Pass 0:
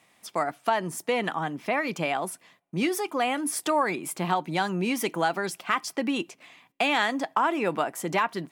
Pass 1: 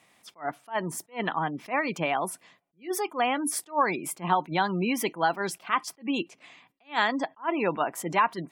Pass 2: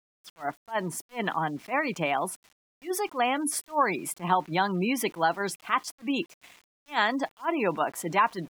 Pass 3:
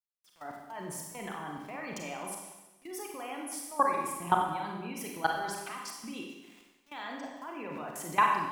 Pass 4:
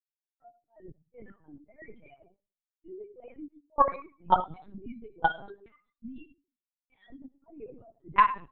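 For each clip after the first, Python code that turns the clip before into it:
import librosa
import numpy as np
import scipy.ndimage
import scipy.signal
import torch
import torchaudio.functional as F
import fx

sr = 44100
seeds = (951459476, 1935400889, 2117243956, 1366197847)

y1 = fx.spec_gate(x, sr, threshold_db=-30, keep='strong')
y1 = fx.dynamic_eq(y1, sr, hz=990.0, q=4.2, threshold_db=-42.0, ratio=4.0, max_db=5)
y1 = fx.attack_slew(y1, sr, db_per_s=290.0)
y2 = np.where(np.abs(y1) >= 10.0 ** (-49.0 / 20.0), y1, 0.0)
y3 = fx.level_steps(y2, sr, step_db=21)
y3 = fx.rev_schroeder(y3, sr, rt60_s=1.1, comb_ms=31, drr_db=0.0)
y4 = fx.bin_expand(y3, sr, power=3.0)
y4 = fx.lpc_vocoder(y4, sr, seeds[0], excitation='pitch_kept', order=10)
y4 = fx.env_lowpass(y4, sr, base_hz=1000.0, full_db=-29.0)
y4 = F.gain(torch.from_numpy(y4), 8.0).numpy()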